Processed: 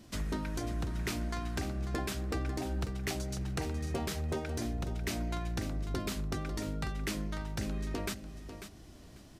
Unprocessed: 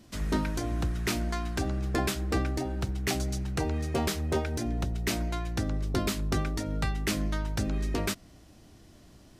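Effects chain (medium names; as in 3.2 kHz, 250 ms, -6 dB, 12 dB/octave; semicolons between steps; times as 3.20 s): compression, threshold -32 dBFS, peak gain reduction 9 dB; on a send: feedback delay 544 ms, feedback 18%, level -10.5 dB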